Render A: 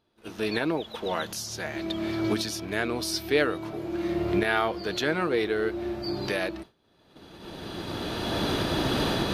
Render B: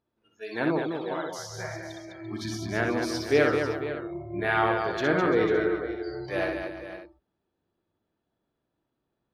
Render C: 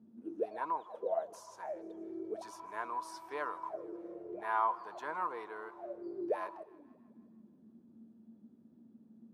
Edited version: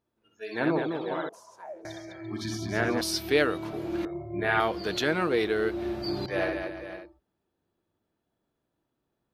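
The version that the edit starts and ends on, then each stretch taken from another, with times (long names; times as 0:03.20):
B
0:01.29–0:01.85: punch in from C
0:03.01–0:04.05: punch in from A
0:04.60–0:06.26: punch in from A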